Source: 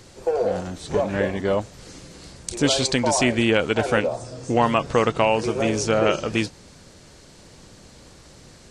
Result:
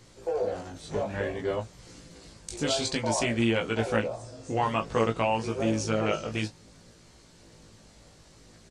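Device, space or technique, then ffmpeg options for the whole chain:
double-tracked vocal: -filter_complex "[0:a]asplit=2[a][b];[b]adelay=18,volume=-8dB[c];[a][c]amix=inputs=2:normalize=0,flanger=delay=17:depth=2.5:speed=0.56,volume=-5dB"

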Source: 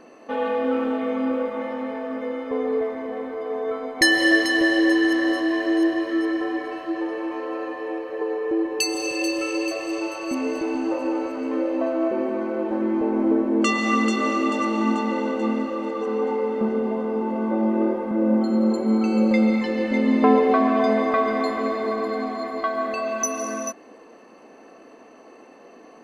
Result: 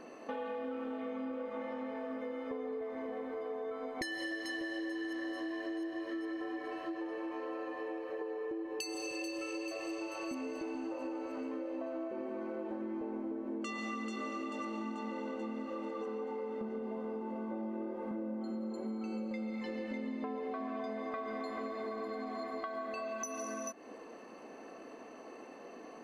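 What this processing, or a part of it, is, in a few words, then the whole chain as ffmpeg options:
serial compression, leveller first: -filter_complex "[0:a]asettb=1/sr,asplit=3[a][b][c];[a]atrim=end=1.024[d];[b]atrim=start=1.02:end=1.96,asetpts=PTS-STARTPTS,afade=t=in:d=0.004:c=qsin,afade=t=out:st=0.936:d=0.004:c=qsin,lowpass=10k[e];[c]atrim=start=1.956[f];[d][e]acrossfade=d=0.004:c1=hsin:c2=qsin[g];[g][f]acrossfade=d=0.004:c1=qsin:c2=hsin,acompressor=threshold=-24dB:ratio=2,acompressor=threshold=-35dB:ratio=5,volume=-3dB"

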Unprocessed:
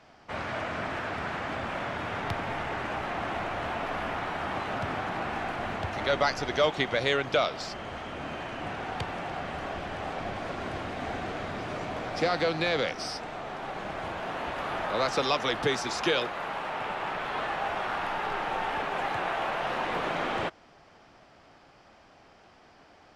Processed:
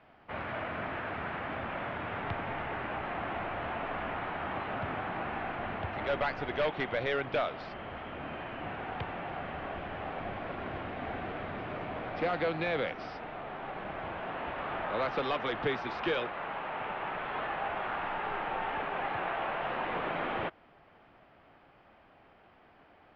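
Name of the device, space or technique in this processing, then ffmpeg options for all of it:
synthesiser wavefolder: -af "aeval=exprs='0.112*(abs(mod(val(0)/0.112+3,4)-2)-1)':c=same,lowpass=f=3.1k:w=0.5412,lowpass=f=3.1k:w=1.3066,volume=-3.5dB"

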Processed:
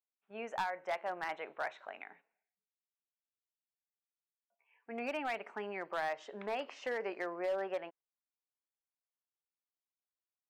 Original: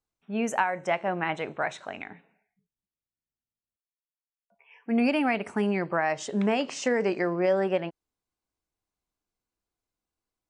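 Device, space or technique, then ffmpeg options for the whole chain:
walkie-talkie: -af "highpass=530,lowpass=2.6k,asoftclip=type=hard:threshold=-22dB,agate=range=-7dB:threshold=-54dB:ratio=16:detection=peak,volume=-7.5dB"

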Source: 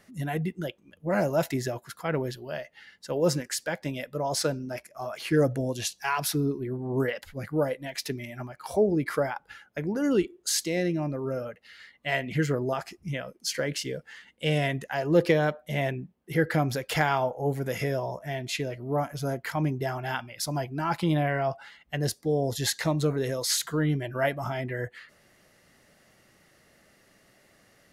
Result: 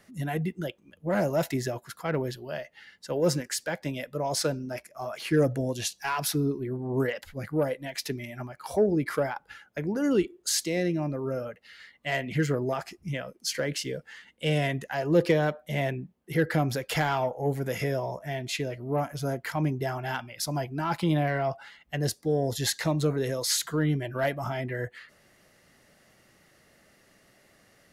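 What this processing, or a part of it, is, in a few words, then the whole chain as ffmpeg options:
one-band saturation: -filter_complex "[0:a]acrossover=split=490|4400[a][b][c];[b]asoftclip=type=tanh:threshold=-21dB[d];[a][d][c]amix=inputs=3:normalize=0"

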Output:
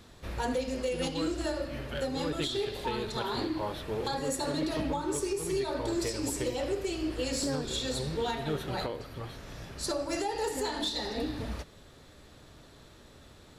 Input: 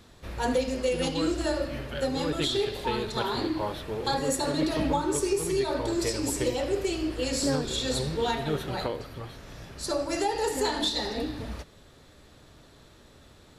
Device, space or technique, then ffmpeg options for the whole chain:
limiter into clipper: -af "alimiter=limit=-22dB:level=0:latency=1:release=444,asoftclip=type=hard:threshold=-24dB"

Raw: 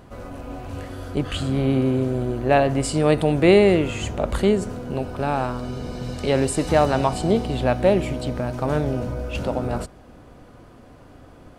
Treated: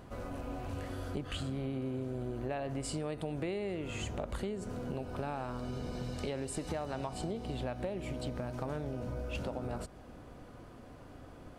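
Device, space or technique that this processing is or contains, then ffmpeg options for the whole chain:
serial compression, leveller first: -af "acompressor=threshold=-20dB:ratio=2,acompressor=threshold=-30dB:ratio=5,volume=-5dB"

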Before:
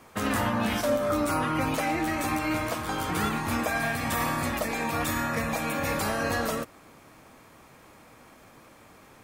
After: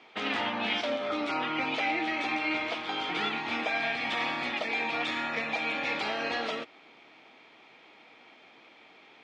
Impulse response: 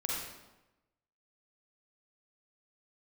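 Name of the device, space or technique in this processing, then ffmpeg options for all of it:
phone earpiece: -af "highpass=400,equalizer=f=550:t=q:w=4:g=-8,equalizer=f=1.1k:t=q:w=4:g=-9,equalizer=f=1.6k:t=q:w=4:g=-6,equalizer=f=2.3k:t=q:w=4:g=5,equalizer=f=3.3k:t=q:w=4:g=6,lowpass=f=4.3k:w=0.5412,lowpass=f=4.3k:w=1.3066,volume=1dB"

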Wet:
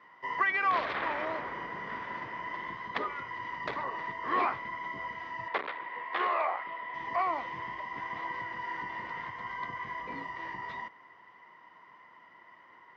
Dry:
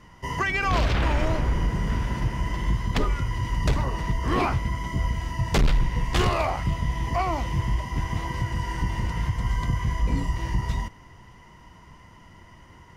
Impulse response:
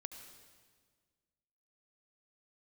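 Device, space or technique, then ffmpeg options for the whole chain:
phone earpiece: -filter_complex "[0:a]highpass=440,equalizer=f=1.1k:t=q:w=4:g=6,equalizer=f=1.9k:t=q:w=4:g=6,equalizer=f=2.8k:t=q:w=4:g=-6,lowpass=f=3.7k:w=0.5412,lowpass=f=3.7k:w=1.3066,asettb=1/sr,asplit=3[a][b][c];[a]atrim=end=5.484[d];[b]atrim=start=5.48:end=6.94,asetpts=PTS-STARTPTS,afade=t=in:d=0.004:c=qsin,afade=t=out:st=1.456:d=0.004:c=qsin,acrossover=split=300 3700:gain=0.1 1 0.126[e][f][g];[e][f][g]amix=inputs=3:normalize=0[h];[c]atrim=start=6.936[i];[d][h]acrossfade=d=0.004:c1=hsin:c2=qsin[j];[j][i]acrossfade=d=0.004:c1=qsin:c2=hsin,volume=-5.5dB"

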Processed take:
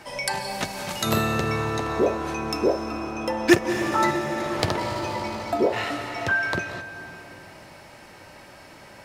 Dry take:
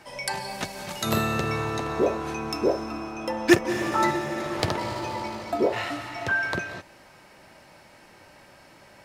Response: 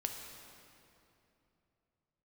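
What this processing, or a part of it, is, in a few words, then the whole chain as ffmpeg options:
compressed reverb return: -filter_complex "[0:a]asplit=2[a][b];[1:a]atrim=start_sample=2205[c];[b][c]afir=irnorm=-1:irlink=0,acompressor=threshold=-33dB:ratio=6,volume=-1dB[d];[a][d]amix=inputs=2:normalize=0"

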